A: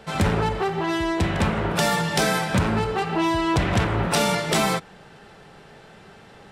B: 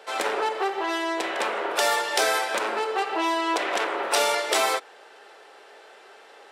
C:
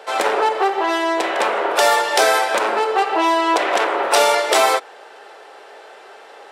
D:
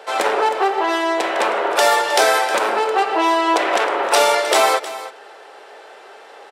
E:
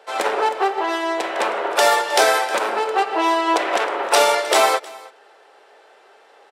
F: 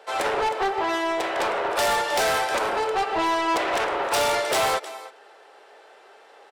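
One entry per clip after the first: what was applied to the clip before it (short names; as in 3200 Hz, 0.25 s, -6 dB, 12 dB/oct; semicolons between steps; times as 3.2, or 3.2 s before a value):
inverse Chebyshev high-pass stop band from 150 Hz, stop band 50 dB
bell 720 Hz +4.5 dB 1.8 oct; gain +5 dB
echo 0.313 s -14.5 dB
upward expander 1.5:1, over -31 dBFS
soft clip -19 dBFS, distortion -8 dB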